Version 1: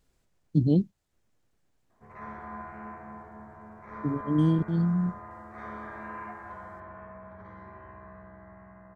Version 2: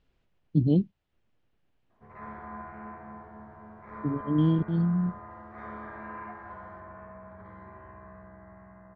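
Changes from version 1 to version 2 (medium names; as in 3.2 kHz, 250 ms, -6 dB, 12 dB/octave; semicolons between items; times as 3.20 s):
speech: add peaking EQ 2.9 kHz +6.5 dB 0.65 oct; master: add distance through air 200 m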